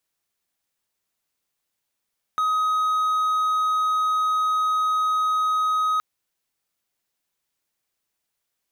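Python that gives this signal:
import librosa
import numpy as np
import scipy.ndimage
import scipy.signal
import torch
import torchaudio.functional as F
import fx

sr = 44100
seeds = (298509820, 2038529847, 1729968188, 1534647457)

y = 10.0 ** (-17.0 / 20.0) * (1.0 - 4.0 * np.abs(np.mod(1260.0 * (np.arange(round(3.62 * sr)) / sr) + 0.25, 1.0) - 0.5))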